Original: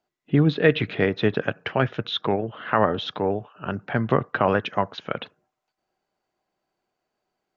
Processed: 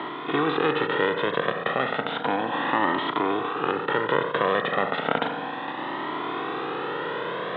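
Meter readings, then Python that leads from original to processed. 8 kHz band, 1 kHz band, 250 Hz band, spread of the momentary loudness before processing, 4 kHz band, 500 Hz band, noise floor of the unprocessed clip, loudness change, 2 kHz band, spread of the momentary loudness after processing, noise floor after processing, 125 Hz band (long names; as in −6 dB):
can't be measured, +3.5 dB, −3.5 dB, 11 LU, 0.0 dB, −1.0 dB, −82 dBFS, −1.5 dB, +2.5 dB, 7 LU, −33 dBFS, −12.0 dB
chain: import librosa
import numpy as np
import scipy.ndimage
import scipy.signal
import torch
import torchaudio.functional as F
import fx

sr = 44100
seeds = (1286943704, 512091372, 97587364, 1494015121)

y = fx.bin_compress(x, sr, power=0.2)
y = fx.rider(y, sr, range_db=3, speed_s=2.0)
y = fx.cabinet(y, sr, low_hz=380.0, low_slope=12, high_hz=2800.0, hz=(450.0, 630.0, 1100.0, 1600.0, 2400.0), db=(-6, -10, -3, -8, -8))
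y = fx.comb_cascade(y, sr, direction='rising', hz=0.33)
y = y * librosa.db_to_amplitude(2.0)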